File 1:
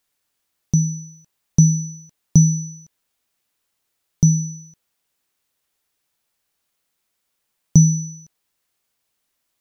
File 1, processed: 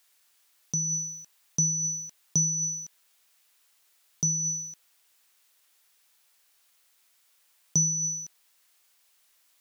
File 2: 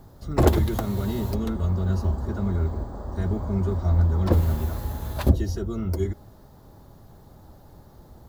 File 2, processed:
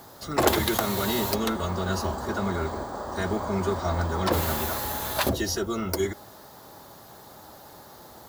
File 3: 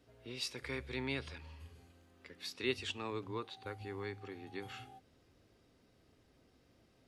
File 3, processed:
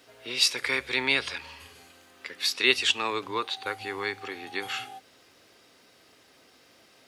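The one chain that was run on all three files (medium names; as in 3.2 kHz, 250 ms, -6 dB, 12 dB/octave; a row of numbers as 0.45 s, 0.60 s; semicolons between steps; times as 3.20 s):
high-pass 1.2 kHz 6 dB/octave; in parallel at 0 dB: compressor with a negative ratio -36 dBFS, ratio -0.5; on the sum: normalise loudness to -27 LUFS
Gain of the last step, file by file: -1.5 dB, +7.0 dB, +12.0 dB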